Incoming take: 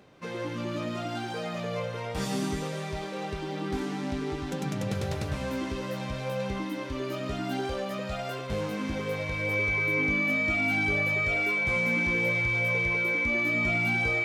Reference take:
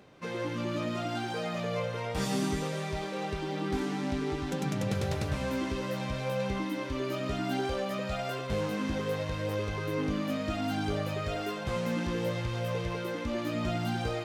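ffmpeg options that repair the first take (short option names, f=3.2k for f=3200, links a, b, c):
-af "bandreject=f=2.3k:w=30"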